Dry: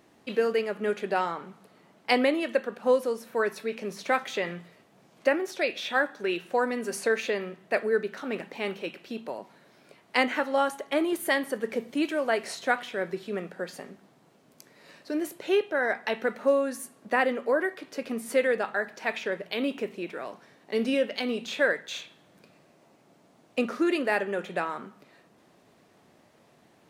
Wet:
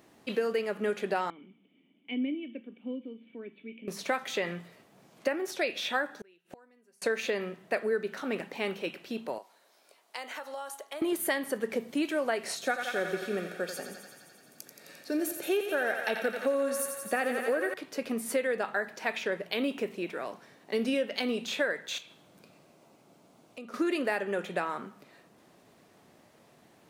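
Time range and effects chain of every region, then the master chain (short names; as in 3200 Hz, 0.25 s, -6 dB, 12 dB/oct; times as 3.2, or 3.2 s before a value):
1.3–3.88 vocal tract filter i + bell 86 Hz -12 dB 1.1 oct + mismatched tape noise reduction encoder only
6.11–7.02 notch 1100 Hz, Q 13 + flipped gate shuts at -32 dBFS, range -33 dB
9.38–11.02 HPF 730 Hz + bell 1900 Hz -8.5 dB 1.7 oct + compressor 4:1, threshold -36 dBFS
12.56–17.74 high shelf 5700 Hz +5.5 dB + notch comb 1000 Hz + thinning echo 87 ms, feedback 79%, high-pass 460 Hz, level -7.5 dB
21.98–23.74 bell 1800 Hz -7.5 dB 0.22 oct + compressor 2.5:1, threshold -49 dBFS
whole clip: high shelf 9400 Hz +6 dB; compressor, threshold -25 dBFS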